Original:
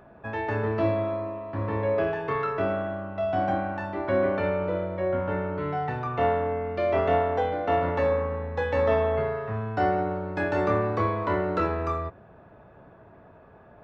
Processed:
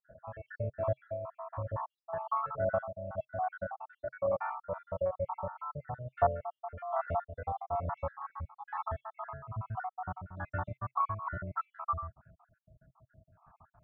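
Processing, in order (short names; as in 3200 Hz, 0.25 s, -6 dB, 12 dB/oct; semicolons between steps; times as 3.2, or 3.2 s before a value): random spectral dropouts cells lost 68%; EQ curve 130 Hz 0 dB, 420 Hz -24 dB, 630 Hz -3 dB, 1300 Hz +3 dB, 1900 Hz -14 dB, 4400 Hz -27 dB; tremolo triangle 2.3 Hz, depth 60%; bell 530 Hz +13.5 dB 0.51 oct, from 7.07 s +2 dB, from 8.3 s -10.5 dB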